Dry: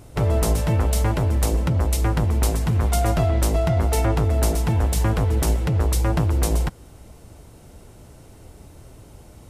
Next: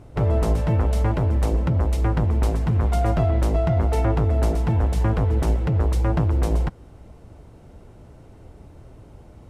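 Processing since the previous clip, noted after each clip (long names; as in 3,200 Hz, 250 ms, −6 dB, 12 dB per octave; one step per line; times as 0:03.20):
low-pass filter 1,600 Hz 6 dB per octave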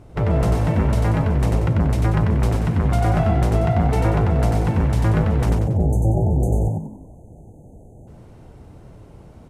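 time-frequency box erased 0:05.50–0:08.07, 860–6,100 Hz
echo with shifted repeats 93 ms, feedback 41%, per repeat +51 Hz, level −3.5 dB
dynamic equaliser 2,000 Hz, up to +4 dB, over −45 dBFS, Q 1.2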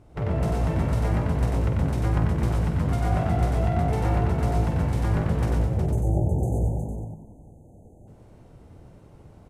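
multi-tap delay 48/117/364 ms −6.5/−5/−6 dB
level −8 dB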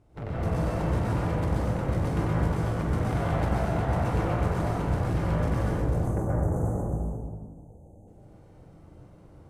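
harmonic generator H 3 −14 dB, 4 −13 dB, 5 −20 dB, 6 −12 dB, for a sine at −11 dBFS
dense smooth reverb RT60 1.3 s, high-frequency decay 0.45×, pre-delay 115 ms, DRR −5.5 dB
level −7.5 dB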